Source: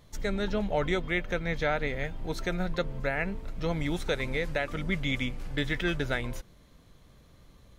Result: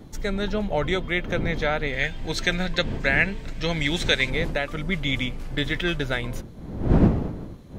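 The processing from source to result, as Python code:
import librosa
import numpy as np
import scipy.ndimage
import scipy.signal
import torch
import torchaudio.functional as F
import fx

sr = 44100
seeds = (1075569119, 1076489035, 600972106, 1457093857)

y = fx.dmg_wind(x, sr, seeds[0], corner_hz=230.0, level_db=-33.0)
y = fx.spec_box(y, sr, start_s=1.93, length_s=2.37, low_hz=1500.0, high_hz=8700.0, gain_db=8)
y = fx.dynamic_eq(y, sr, hz=3300.0, q=2.0, threshold_db=-42.0, ratio=4.0, max_db=4)
y = y * 10.0 ** (3.5 / 20.0)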